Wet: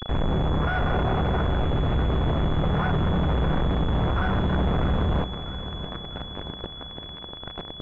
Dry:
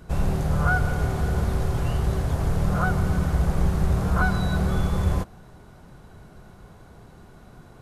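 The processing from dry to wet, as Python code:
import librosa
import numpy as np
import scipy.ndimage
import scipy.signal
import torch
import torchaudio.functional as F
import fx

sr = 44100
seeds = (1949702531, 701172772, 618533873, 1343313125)

p1 = fx.peak_eq(x, sr, hz=960.0, db=5.5, octaves=2.4, at=(0.75, 1.47))
p2 = fx.quant_companded(p1, sr, bits=2)
p3 = 10.0 ** (-25.0 / 20.0) * np.tanh(p2 / 10.0 ** (-25.0 / 20.0))
p4 = p3 + fx.echo_feedback(p3, sr, ms=648, feedback_pct=58, wet_db=-12.5, dry=0)
p5 = fx.pwm(p4, sr, carrier_hz=3400.0)
y = p5 * 10.0 ** (5.5 / 20.0)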